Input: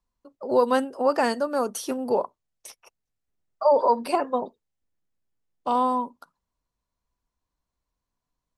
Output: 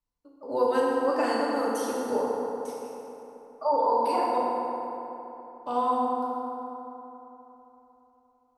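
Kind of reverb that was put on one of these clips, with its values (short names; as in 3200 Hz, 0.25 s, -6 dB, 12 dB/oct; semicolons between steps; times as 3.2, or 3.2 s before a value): FDN reverb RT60 3.5 s, high-frequency decay 0.5×, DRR -6 dB; gain -9.5 dB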